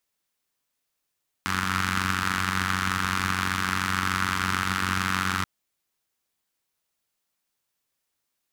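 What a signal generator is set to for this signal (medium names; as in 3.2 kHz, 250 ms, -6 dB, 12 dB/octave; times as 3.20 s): four-cylinder engine model, steady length 3.98 s, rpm 2800, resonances 100/190/1300 Hz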